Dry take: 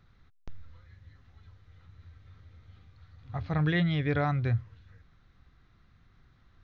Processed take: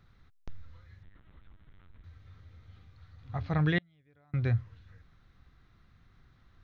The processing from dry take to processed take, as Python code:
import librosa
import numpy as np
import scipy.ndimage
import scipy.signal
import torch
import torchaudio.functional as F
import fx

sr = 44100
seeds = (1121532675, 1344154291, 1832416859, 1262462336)

y = fx.lpc_vocoder(x, sr, seeds[0], excitation='pitch_kept', order=8, at=(1.03, 2.04))
y = fx.gate_flip(y, sr, shuts_db=-25.0, range_db=-37, at=(3.78, 4.34))